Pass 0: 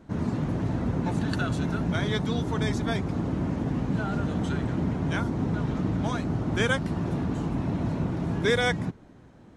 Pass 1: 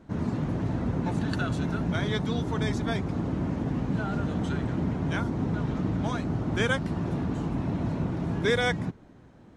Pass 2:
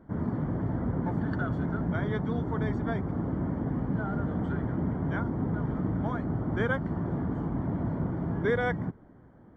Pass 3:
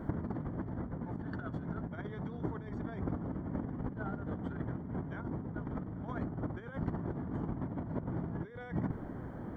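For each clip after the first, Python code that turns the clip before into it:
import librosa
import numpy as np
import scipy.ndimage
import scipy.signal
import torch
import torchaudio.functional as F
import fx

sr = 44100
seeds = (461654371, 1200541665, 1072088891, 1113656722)

y1 = fx.high_shelf(x, sr, hz=8400.0, db=-4.5)
y1 = y1 * librosa.db_to_amplitude(-1.0)
y2 = scipy.signal.savgol_filter(y1, 41, 4, mode='constant')
y2 = y2 * librosa.db_to_amplitude(-1.5)
y3 = fx.over_compress(y2, sr, threshold_db=-37.0, ratio=-0.5)
y3 = y3 * librosa.db_to_amplitude(1.5)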